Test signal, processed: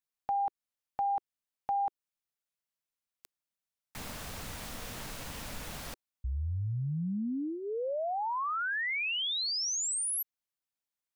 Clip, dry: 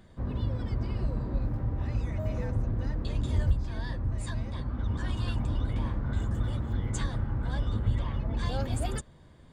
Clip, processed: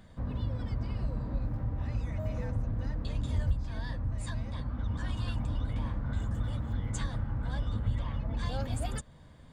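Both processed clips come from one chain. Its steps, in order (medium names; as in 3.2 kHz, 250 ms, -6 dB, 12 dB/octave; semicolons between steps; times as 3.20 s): peaking EQ 370 Hz -10 dB 0.27 oct; in parallel at 0 dB: compression, threshold -37 dBFS; on the sum: trim -5 dB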